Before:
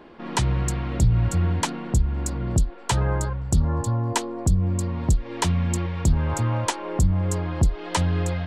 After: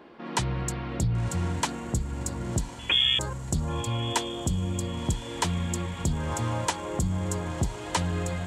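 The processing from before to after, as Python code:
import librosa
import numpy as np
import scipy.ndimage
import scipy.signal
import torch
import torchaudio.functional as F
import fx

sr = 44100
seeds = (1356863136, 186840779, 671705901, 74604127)

y = fx.freq_invert(x, sr, carrier_hz=3400, at=(2.79, 3.19))
y = fx.highpass(y, sr, hz=140.0, slope=6)
y = fx.echo_diffused(y, sr, ms=1061, feedback_pct=52, wet_db=-13)
y = y * librosa.db_to_amplitude(-2.5)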